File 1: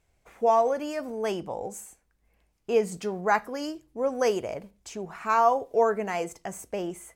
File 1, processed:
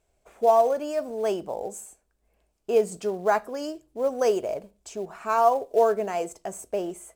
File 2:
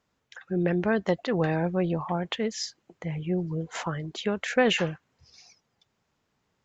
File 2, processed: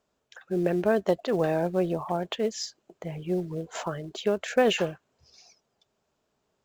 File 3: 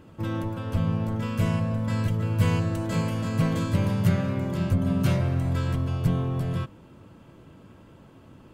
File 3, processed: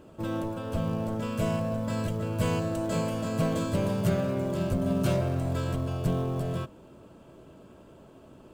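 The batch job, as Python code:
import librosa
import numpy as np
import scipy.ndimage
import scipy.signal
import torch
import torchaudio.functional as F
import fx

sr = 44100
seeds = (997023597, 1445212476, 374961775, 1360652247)

p1 = fx.graphic_eq_31(x, sr, hz=(100, 160, 400, 630, 2000, 8000), db=(-9, -3, 6, 8, -6, 5))
p2 = fx.quant_float(p1, sr, bits=2)
p3 = p1 + (p2 * librosa.db_to_amplitude(-8.5))
y = p3 * librosa.db_to_amplitude(-4.5)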